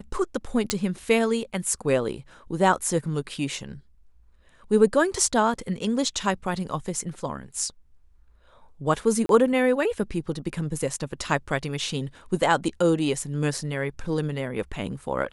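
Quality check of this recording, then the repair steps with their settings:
0:00.70: click −7 dBFS
0:09.26–0:09.29: drop-out 32 ms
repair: click removal
repair the gap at 0:09.26, 32 ms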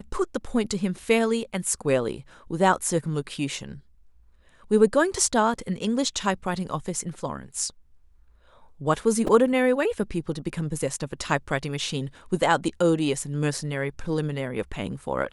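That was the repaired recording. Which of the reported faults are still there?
none of them is left

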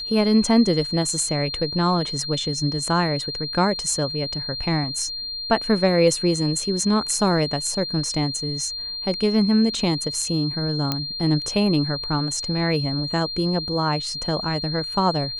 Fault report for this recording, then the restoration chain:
whistle 4,200 Hz −28 dBFS
0:10.92: click −8 dBFS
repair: click removal
notch filter 4,200 Hz, Q 30

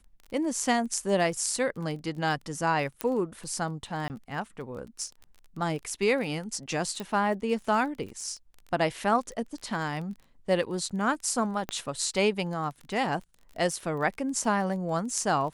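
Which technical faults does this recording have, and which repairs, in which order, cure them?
surface crackle 25 per second −37 dBFS
0:03.01: click −12 dBFS
0:04.08–0:04.10: drop-out 19 ms
0:07.00: click
0:11.69: click −17 dBFS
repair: click removal
repair the gap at 0:04.08, 19 ms

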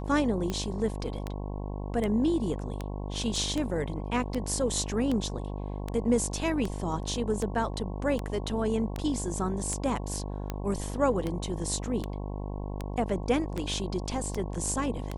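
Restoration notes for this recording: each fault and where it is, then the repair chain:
mains buzz 50 Hz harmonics 22 −35 dBFS
scratch tick 78 rpm −18 dBFS
0:03.36: drop-out 2.1 ms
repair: click removal
hum removal 50 Hz, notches 22
repair the gap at 0:03.36, 2.1 ms

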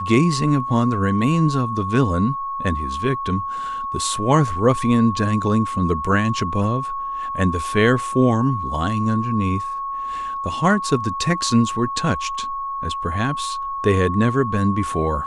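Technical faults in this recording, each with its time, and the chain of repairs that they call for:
whistle 1,100 Hz −24 dBFS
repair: notch filter 1,100 Hz, Q 30

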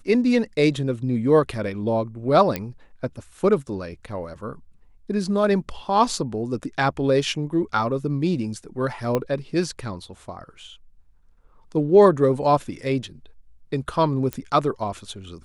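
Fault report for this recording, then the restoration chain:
0:02.56: click −10 dBFS
0:09.15: click −10 dBFS
0:14.33: click −13 dBFS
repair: click removal

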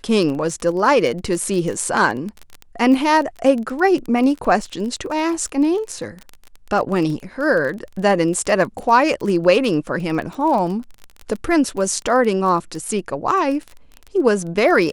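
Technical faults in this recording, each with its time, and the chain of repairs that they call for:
surface crackle 24 per second −24 dBFS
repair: click removal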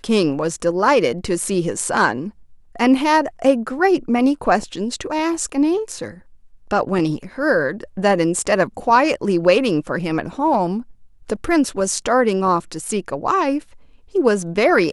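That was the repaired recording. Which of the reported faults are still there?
none of them is left

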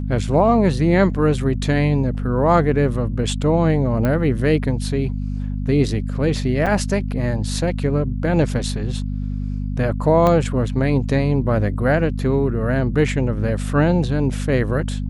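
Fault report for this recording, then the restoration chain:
mains hum 50 Hz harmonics 5 −24 dBFS
0:04.05: click −10 dBFS
0:06.66–0:06.67: drop-out 6.6 ms
0:10.27: click −7 dBFS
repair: click removal
hum removal 50 Hz, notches 5
repair the gap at 0:06.66, 6.6 ms

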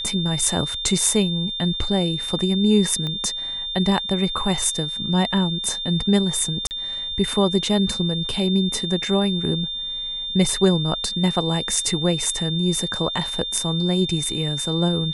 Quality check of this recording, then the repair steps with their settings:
whistle 3,600 Hz −26 dBFS
0:03.07: click −17 dBFS
0:06.67–0:06.71: drop-out 39 ms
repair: click removal
notch filter 3,600 Hz, Q 30
repair the gap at 0:06.67, 39 ms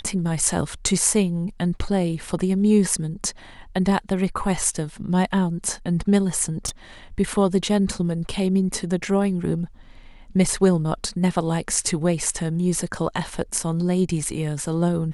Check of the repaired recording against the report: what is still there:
0:03.07: click

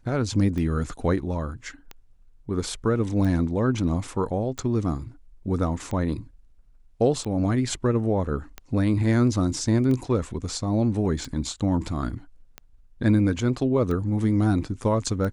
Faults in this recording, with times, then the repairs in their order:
scratch tick 45 rpm −20 dBFS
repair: click removal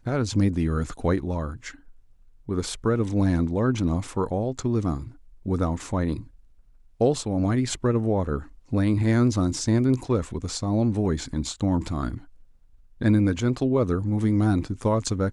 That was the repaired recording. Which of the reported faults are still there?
none of them is left

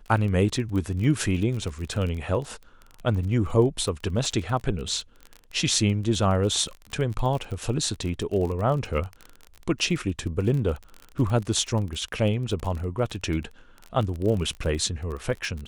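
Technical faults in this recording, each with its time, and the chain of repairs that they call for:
surface crackle 27 per second −30 dBFS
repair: click removal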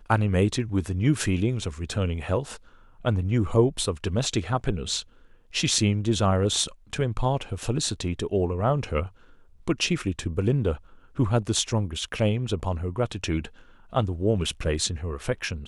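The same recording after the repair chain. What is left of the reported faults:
none of them is left

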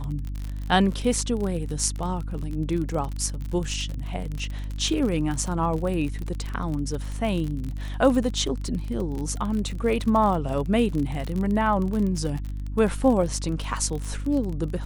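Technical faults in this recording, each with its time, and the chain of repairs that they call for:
surface crackle 40 per second −28 dBFS
mains hum 50 Hz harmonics 6 −31 dBFS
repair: click removal
hum removal 50 Hz, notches 6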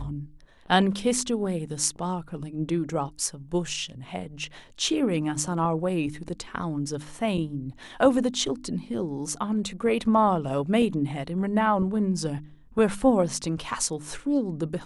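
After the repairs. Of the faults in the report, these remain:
none of them is left

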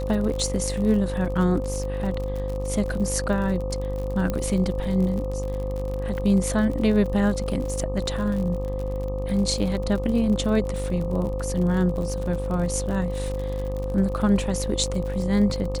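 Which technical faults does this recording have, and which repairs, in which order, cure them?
mains buzz 50 Hz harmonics 25 −29 dBFS
surface crackle 50 per second −30 dBFS
whistle 520 Hz −30 dBFS
0:04.30: click −13 dBFS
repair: click removal
notch filter 520 Hz, Q 30
hum removal 50 Hz, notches 25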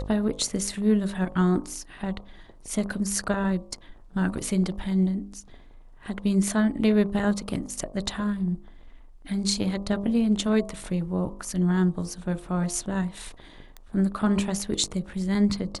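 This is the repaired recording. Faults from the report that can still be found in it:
none of them is left

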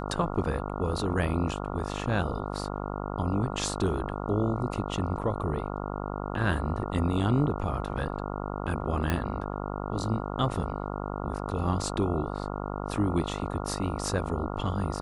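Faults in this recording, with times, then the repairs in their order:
mains buzz 50 Hz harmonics 28 −34 dBFS
0:09.10: click −13 dBFS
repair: click removal
hum removal 50 Hz, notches 28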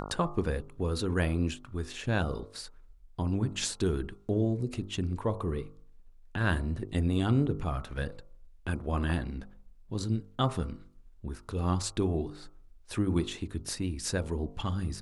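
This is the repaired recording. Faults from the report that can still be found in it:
none of them is left

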